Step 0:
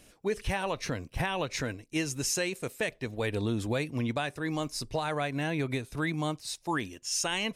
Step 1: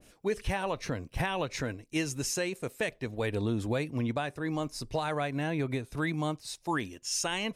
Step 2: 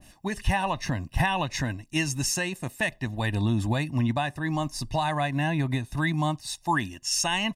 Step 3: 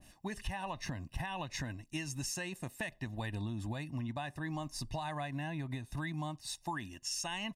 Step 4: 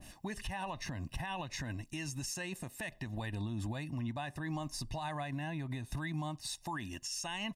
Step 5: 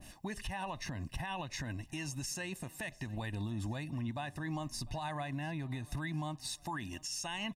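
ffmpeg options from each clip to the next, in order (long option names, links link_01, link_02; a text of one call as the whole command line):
ffmpeg -i in.wav -af "adynamicequalizer=threshold=0.00501:dfrequency=1700:dqfactor=0.7:tfrequency=1700:tqfactor=0.7:attack=5:release=100:ratio=0.375:range=3:mode=cutabove:tftype=highshelf" out.wav
ffmpeg -i in.wav -af "aecho=1:1:1.1:0.82,volume=3.5dB" out.wav
ffmpeg -i in.wav -af "acompressor=threshold=-29dB:ratio=6,volume=-6.5dB" out.wav
ffmpeg -i in.wav -af "alimiter=level_in=13dB:limit=-24dB:level=0:latency=1:release=179,volume=-13dB,volume=6.5dB" out.wav
ffmpeg -i in.wav -af "aecho=1:1:699|1398|2097:0.0708|0.0297|0.0125" out.wav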